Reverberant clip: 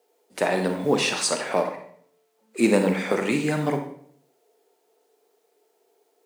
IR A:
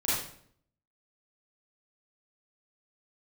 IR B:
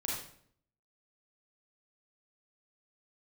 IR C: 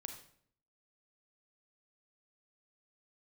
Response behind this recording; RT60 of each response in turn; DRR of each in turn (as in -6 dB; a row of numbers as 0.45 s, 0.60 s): C; 0.60 s, 0.60 s, 0.60 s; -9.5 dB, -4.0 dB, 5.0 dB